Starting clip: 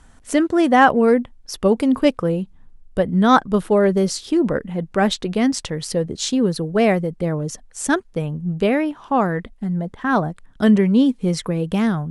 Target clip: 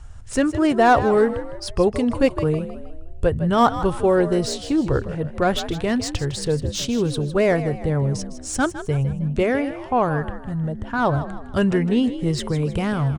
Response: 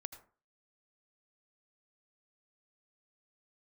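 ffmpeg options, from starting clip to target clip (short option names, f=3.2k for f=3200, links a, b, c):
-filter_complex "[0:a]lowshelf=f=150:t=q:w=3:g=10,acrossover=split=1100[a][b];[b]asoftclip=type=tanh:threshold=-20.5dB[c];[a][c]amix=inputs=2:normalize=0,asplit=5[d][e][f][g][h];[e]adelay=144,afreqshift=61,volume=-12.5dB[i];[f]adelay=288,afreqshift=122,volume=-20.2dB[j];[g]adelay=432,afreqshift=183,volume=-28dB[k];[h]adelay=576,afreqshift=244,volume=-35.7dB[l];[d][i][j][k][l]amix=inputs=5:normalize=0,asetrate=40517,aresample=44100"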